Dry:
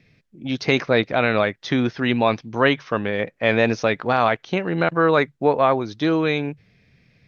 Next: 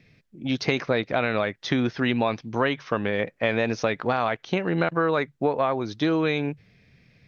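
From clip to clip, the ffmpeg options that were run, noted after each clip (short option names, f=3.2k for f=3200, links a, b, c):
-af "acompressor=threshold=-19dB:ratio=6"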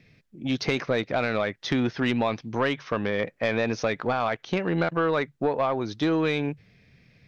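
-af "asoftclip=type=tanh:threshold=-14dB"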